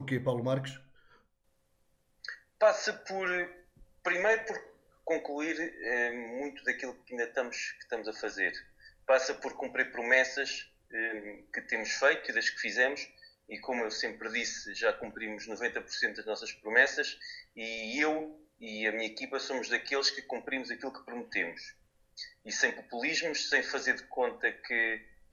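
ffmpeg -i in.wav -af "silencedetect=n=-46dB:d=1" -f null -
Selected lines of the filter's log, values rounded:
silence_start: 0.78
silence_end: 2.25 | silence_duration: 1.47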